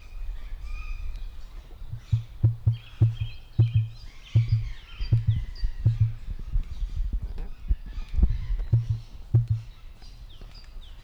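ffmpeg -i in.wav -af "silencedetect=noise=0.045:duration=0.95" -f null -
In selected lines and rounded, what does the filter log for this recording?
silence_start: 9.57
silence_end: 11.03 | silence_duration: 1.46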